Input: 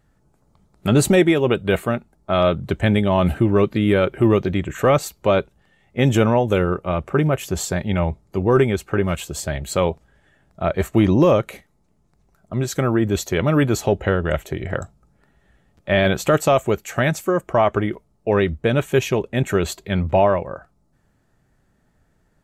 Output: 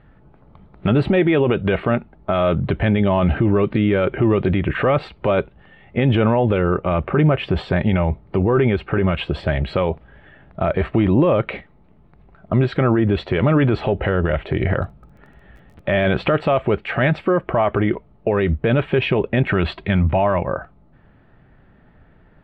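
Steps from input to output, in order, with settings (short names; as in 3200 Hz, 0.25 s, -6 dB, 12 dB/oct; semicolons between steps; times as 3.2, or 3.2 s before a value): 19.51–20.48 bell 460 Hz -8 dB 0.6 oct; in parallel at -2 dB: compressor, threshold -28 dBFS, peak gain reduction 16.5 dB; on the sum: limiter -15 dBFS, peak gain reduction 10.5 dB; inverse Chebyshev low-pass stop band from 6100 Hz, stop band 40 dB; 14.7–16.07 crackle 24/s -48 dBFS; gain +6.5 dB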